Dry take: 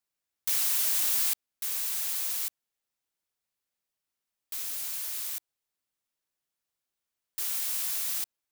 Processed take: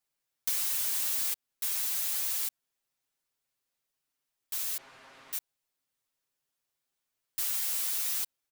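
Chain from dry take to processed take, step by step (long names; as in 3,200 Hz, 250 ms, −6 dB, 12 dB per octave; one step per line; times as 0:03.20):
0:04.77–0:05.33: low-pass filter 1,400 Hz 12 dB per octave
comb filter 7.5 ms, depth 78%
downward compressor, threshold −27 dBFS, peak gain reduction 6 dB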